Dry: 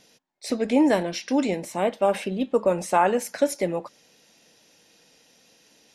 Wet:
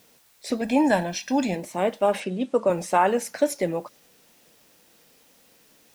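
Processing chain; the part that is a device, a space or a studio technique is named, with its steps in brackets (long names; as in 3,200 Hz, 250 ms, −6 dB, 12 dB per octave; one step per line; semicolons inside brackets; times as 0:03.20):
plain cassette with noise reduction switched in (one half of a high-frequency compander decoder only; tape wow and flutter; white noise bed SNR 34 dB)
0:00.61–0:01.56: comb filter 1.2 ms, depth 62%
0:02.20–0:02.70: Chebyshev band-pass filter 130–8,900 Hz, order 3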